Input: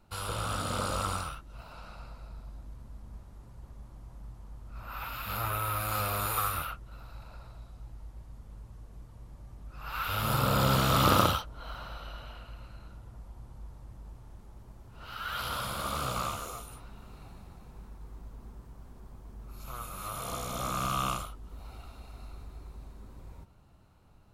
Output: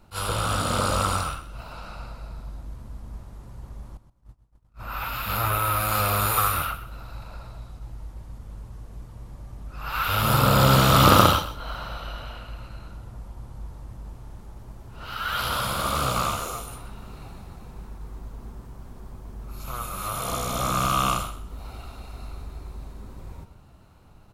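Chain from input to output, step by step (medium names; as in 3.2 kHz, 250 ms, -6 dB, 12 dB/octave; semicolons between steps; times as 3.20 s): 3.97–4.77 s: gate -41 dBFS, range -31 dB; feedback delay 127 ms, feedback 21%, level -13.5 dB; attacks held to a fixed rise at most 310 dB/s; trim +8 dB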